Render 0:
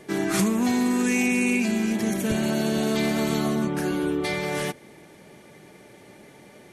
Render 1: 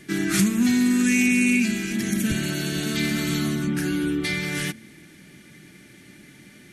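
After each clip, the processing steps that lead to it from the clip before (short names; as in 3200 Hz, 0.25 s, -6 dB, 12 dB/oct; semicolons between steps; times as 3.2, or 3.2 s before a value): band shelf 670 Hz -15 dB; de-hum 110.2 Hz, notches 2; gain +3.5 dB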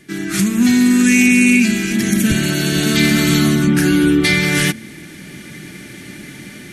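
AGC gain up to 14 dB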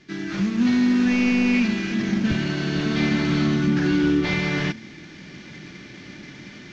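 CVSD 32 kbps; gain -6 dB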